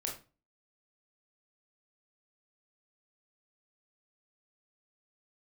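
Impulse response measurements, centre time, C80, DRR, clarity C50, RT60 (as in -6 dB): 26 ms, 13.5 dB, -1.0 dB, 7.0 dB, 0.35 s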